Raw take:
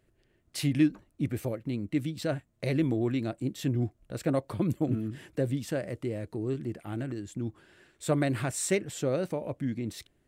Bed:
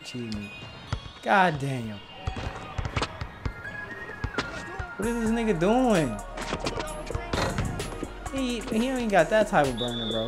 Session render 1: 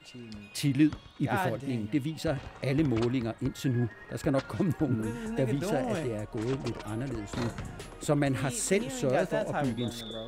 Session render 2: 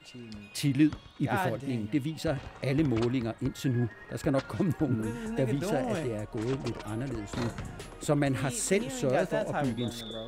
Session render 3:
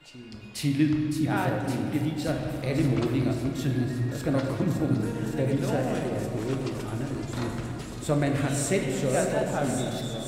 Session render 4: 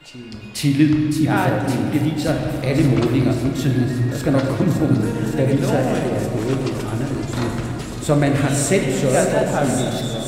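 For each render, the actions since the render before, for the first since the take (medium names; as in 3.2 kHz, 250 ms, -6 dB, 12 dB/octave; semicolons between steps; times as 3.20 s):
add bed -10.5 dB
no audible change
feedback echo behind a high-pass 562 ms, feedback 77%, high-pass 4.8 kHz, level -4 dB; simulated room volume 120 m³, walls hard, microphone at 0.31 m
trim +8.5 dB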